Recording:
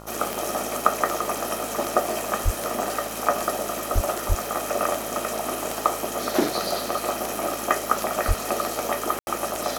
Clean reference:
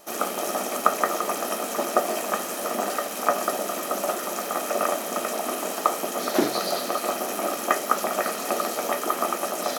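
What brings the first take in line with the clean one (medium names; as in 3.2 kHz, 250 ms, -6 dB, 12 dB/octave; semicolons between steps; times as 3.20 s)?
de-click; de-hum 54.1 Hz, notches 26; de-plosive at 2.44/3.94/4.28/8.27 s; room tone fill 9.19–9.27 s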